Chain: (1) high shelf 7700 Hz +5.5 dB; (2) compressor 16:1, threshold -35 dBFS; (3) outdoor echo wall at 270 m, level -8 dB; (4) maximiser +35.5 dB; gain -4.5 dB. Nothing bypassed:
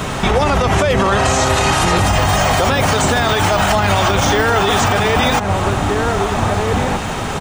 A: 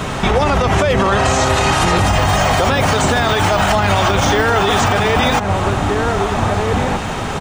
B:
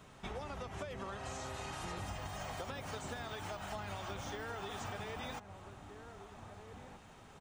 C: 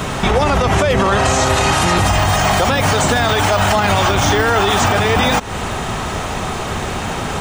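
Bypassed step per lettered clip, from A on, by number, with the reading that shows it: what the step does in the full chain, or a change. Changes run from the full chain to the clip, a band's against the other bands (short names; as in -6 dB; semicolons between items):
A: 1, 8 kHz band -2.0 dB; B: 4, crest factor change +6.5 dB; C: 3, momentary loudness spread change +5 LU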